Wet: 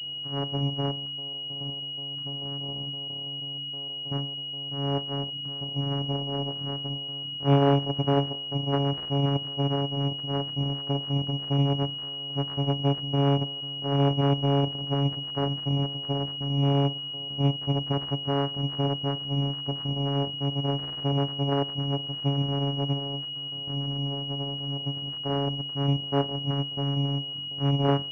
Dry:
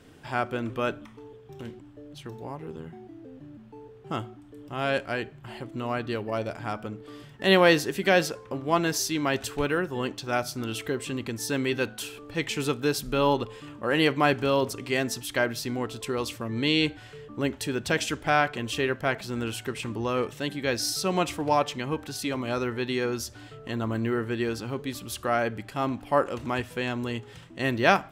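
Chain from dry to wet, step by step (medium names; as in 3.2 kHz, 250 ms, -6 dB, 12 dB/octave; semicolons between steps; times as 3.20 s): dynamic bell 270 Hz, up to +4 dB, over -39 dBFS, Q 2.8; 22.92–24.94 s: compression 10:1, threshold -30 dBFS, peak gain reduction 9 dB; vocoder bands 4, saw 140 Hz; class-D stage that switches slowly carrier 2.9 kHz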